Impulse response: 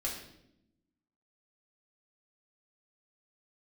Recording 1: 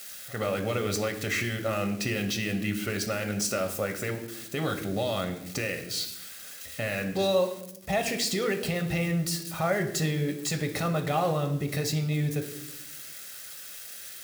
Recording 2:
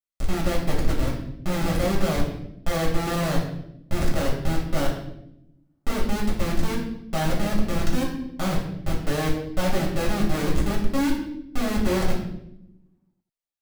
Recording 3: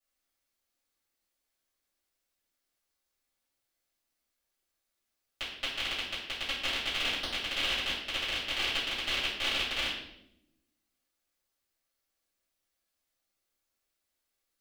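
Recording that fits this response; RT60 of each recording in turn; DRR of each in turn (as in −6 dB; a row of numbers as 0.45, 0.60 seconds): 2; 0.80, 0.80, 0.80 seconds; 5.5, −3.5, −12.5 decibels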